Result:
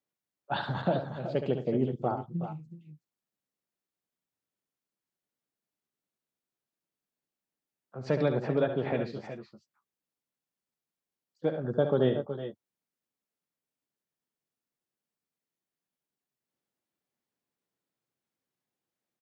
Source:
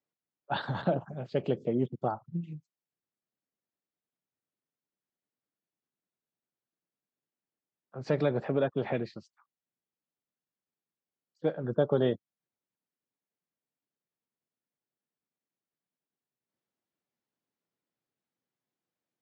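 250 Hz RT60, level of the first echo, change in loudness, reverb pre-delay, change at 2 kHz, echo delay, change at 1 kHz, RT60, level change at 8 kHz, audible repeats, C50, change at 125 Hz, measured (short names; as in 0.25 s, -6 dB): none, -8.5 dB, +1.0 dB, none, +1.0 dB, 70 ms, +1.0 dB, none, n/a, 3, none, +1.5 dB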